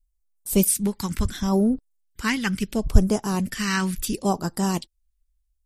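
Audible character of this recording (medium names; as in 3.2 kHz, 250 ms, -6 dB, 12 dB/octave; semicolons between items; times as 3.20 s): phasing stages 2, 0.72 Hz, lowest notch 620–2200 Hz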